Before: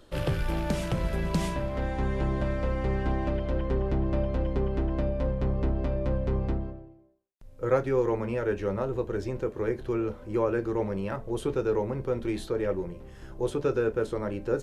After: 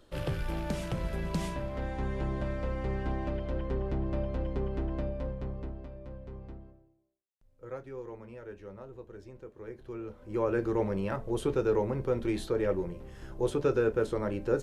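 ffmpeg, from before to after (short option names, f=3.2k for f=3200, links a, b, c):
-af "volume=11dB,afade=t=out:st=4.94:d=0.96:silence=0.266073,afade=t=in:st=9.55:d=0.6:silence=0.473151,afade=t=in:st=10.15:d=0.47:silence=0.334965"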